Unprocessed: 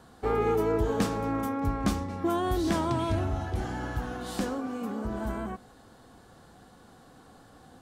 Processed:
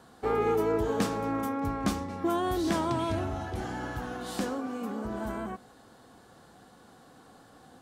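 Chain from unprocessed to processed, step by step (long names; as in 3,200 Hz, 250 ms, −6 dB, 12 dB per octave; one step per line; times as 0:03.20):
low-shelf EQ 81 Hz −12 dB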